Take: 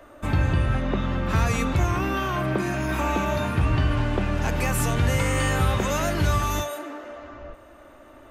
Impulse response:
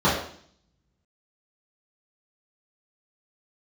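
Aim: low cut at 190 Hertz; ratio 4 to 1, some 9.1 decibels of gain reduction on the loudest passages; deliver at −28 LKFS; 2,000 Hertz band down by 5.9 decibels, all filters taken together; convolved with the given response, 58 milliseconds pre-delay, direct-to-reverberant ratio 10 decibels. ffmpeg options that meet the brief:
-filter_complex "[0:a]highpass=190,equalizer=frequency=2000:width_type=o:gain=-8,acompressor=threshold=-33dB:ratio=4,asplit=2[link_01][link_02];[1:a]atrim=start_sample=2205,adelay=58[link_03];[link_02][link_03]afir=irnorm=-1:irlink=0,volume=-29.5dB[link_04];[link_01][link_04]amix=inputs=2:normalize=0,volume=7dB"

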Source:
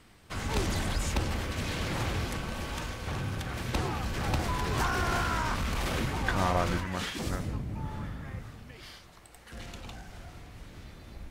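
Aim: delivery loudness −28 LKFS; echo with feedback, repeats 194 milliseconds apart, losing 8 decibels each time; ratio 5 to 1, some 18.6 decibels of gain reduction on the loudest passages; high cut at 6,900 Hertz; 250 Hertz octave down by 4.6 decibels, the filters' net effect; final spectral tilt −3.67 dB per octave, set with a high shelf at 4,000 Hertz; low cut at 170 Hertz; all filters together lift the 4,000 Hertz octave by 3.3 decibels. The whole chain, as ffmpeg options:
ffmpeg -i in.wav -af "highpass=170,lowpass=6900,equalizer=frequency=250:width_type=o:gain=-4.5,highshelf=frequency=4000:gain=-4,equalizer=frequency=4000:width_type=o:gain=7,acompressor=threshold=-45dB:ratio=5,aecho=1:1:194|388|582|776|970:0.398|0.159|0.0637|0.0255|0.0102,volume=18dB" out.wav

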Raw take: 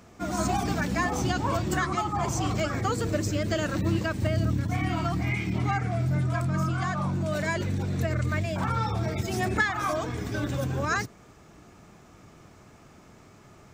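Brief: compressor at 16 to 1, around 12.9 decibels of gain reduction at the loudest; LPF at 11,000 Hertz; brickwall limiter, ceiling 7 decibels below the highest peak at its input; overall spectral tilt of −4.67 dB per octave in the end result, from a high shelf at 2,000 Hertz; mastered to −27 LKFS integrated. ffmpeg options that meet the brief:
ffmpeg -i in.wav -af "lowpass=11000,highshelf=frequency=2000:gain=8.5,acompressor=threshold=-29dB:ratio=16,volume=8dB,alimiter=limit=-18dB:level=0:latency=1" out.wav

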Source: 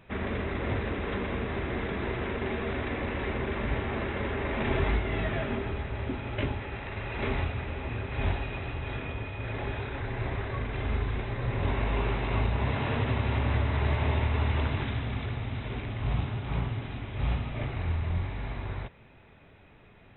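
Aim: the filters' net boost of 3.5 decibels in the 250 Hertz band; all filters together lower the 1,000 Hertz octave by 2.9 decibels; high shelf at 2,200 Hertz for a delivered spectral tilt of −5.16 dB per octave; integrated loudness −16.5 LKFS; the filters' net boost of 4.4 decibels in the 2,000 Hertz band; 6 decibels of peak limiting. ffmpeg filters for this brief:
ffmpeg -i in.wav -af "equalizer=frequency=250:width_type=o:gain=4.5,equalizer=frequency=1000:width_type=o:gain=-6,equalizer=frequency=2000:width_type=o:gain=4.5,highshelf=frequency=2200:gain=4,volume=14.5dB,alimiter=limit=-6dB:level=0:latency=1" out.wav

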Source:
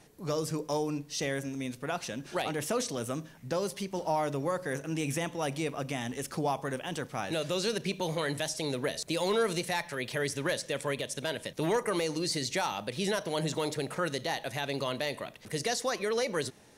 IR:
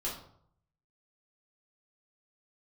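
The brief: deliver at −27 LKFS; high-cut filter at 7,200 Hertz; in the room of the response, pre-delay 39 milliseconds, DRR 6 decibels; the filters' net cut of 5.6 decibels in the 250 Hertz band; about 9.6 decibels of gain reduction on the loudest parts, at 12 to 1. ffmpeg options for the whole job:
-filter_complex "[0:a]lowpass=7200,equalizer=frequency=250:width_type=o:gain=-8.5,acompressor=threshold=-36dB:ratio=12,asplit=2[link_01][link_02];[1:a]atrim=start_sample=2205,adelay=39[link_03];[link_02][link_03]afir=irnorm=-1:irlink=0,volume=-9dB[link_04];[link_01][link_04]amix=inputs=2:normalize=0,volume=12.5dB"

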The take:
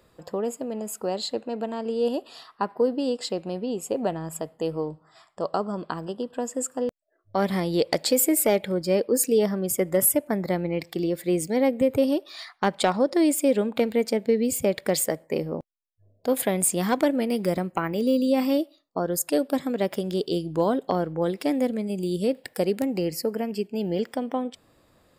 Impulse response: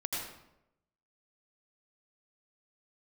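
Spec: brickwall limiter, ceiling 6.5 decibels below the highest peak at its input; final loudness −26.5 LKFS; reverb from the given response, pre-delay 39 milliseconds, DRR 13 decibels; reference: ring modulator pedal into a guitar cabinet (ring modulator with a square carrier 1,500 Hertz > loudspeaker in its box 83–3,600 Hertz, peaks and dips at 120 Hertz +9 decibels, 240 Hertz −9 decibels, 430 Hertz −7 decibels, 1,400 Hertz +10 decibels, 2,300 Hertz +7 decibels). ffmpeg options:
-filter_complex "[0:a]alimiter=limit=-18dB:level=0:latency=1,asplit=2[link_01][link_02];[1:a]atrim=start_sample=2205,adelay=39[link_03];[link_02][link_03]afir=irnorm=-1:irlink=0,volume=-17dB[link_04];[link_01][link_04]amix=inputs=2:normalize=0,aeval=exprs='val(0)*sgn(sin(2*PI*1500*n/s))':channel_layout=same,highpass=83,equalizer=frequency=120:width_type=q:width=4:gain=9,equalizer=frequency=240:width_type=q:width=4:gain=-9,equalizer=frequency=430:width_type=q:width=4:gain=-7,equalizer=frequency=1400:width_type=q:width=4:gain=10,equalizer=frequency=2300:width_type=q:width=4:gain=7,lowpass=frequency=3600:width=0.5412,lowpass=frequency=3600:width=1.3066,volume=-3dB"

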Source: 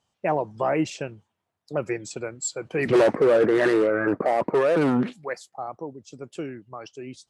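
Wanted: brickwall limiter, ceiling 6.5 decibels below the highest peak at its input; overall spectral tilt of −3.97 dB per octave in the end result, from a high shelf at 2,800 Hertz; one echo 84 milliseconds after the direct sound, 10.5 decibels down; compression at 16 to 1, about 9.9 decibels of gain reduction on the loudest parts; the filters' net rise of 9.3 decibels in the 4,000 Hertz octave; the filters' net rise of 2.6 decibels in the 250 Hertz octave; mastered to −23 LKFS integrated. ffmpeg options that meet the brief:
ffmpeg -i in.wav -af "equalizer=frequency=250:width_type=o:gain=3.5,highshelf=frequency=2800:gain=3.5,equalizer=frequency=4000:width_type=o:gain=9,acompressor=threshold=-23dB:ratio=16,alimiter=limit=-21dB:level=0:latency=1,aecho=1:1:84:0.299,volume=8.5dB" out.wav

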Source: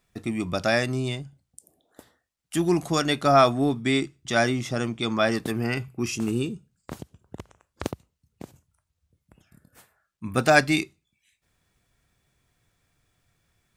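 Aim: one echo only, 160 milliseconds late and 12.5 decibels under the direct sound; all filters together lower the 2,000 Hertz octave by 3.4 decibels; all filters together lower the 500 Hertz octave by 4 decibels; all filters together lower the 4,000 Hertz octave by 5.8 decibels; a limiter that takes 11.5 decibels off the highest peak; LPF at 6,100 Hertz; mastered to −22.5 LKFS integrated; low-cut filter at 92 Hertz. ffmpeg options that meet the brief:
ffmpeg -i in.wav -af "highpass=92,lowpass=6100,equalizer=frequency=500:width_type=o:gain=-5.5,equalizer=frequency=2000:width_type=o:gain=-3,equalizer=frequency=4000:width_type=o:gain=-5.5,alimiter=limit=-18dB:level=0:latency=1,aecho=1:1:160:0.237,volume=7.5dB" out.wav

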